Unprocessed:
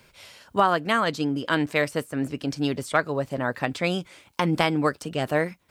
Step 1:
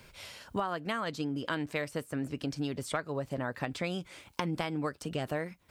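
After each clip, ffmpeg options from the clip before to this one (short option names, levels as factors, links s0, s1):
-af "lowshelf=f=85:g=7.5,acompressor=threshold=0.0251:ratio=4"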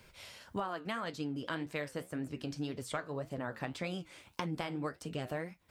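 -af "flanger=delay=9.5:depth=7.6:regen=-67:speed=1.8:shape=triangular"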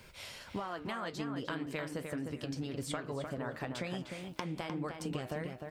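-filter_complex "[0:a]acompressor=threshold=0.0112:ratio=6,asplit=2[s0][s1];[s1]adelay=304,lowpass=f=2500:p=1,volume=0.562,asplit=2[s2][s3];[s3]adelay=304,lowpass=f=2500:p=1,volume=0.28,asplit=2[s4][s5];[s5]adelay=304,lowpass=f=2500:p=1,volume=0.28,asplit=2[s6][s7];[s7]adelay=304,lowpass=f=2500:p=1,volume=0.28[s8];[s2][s4][s6][s8]amix=inputs=4:normalize=0[s9];[s0][s9]amix=inputs=2:normalize=0,volume=1.58"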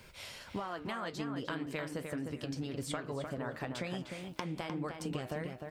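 -af anull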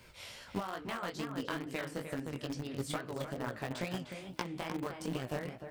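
-filter_complex "[0:a]flanger=delay=15.5:depth=6.6:speed=2.3,asplit=2[s0][s1];[s1]aeval=exprs='val(0)*gte(abs(val(0)),0.0178)':c=same,volume=0.562[s2];[s0][s2]amix=inputs=2:normalize=0,volume=1.19"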